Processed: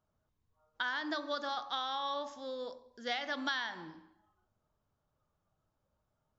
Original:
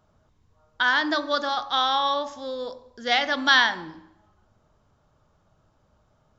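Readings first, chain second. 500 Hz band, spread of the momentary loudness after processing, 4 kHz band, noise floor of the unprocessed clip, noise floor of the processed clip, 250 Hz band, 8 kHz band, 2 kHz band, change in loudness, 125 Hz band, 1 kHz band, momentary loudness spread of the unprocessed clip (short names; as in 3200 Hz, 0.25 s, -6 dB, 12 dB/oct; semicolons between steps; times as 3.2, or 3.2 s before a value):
-11.0 dB, 9 LU, -14.5 dB, -66 dBFS, -83 dBFS, -11.0 dB, n/a, -15.5 dB, -14.5 dB, -11.0 dB, -13.5 dB, 16 LU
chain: spectral noise reduction 8 dB; compressor 6:1, threshold -23 dBFS, peak gain reduction 10.5 dB; gain -9 dB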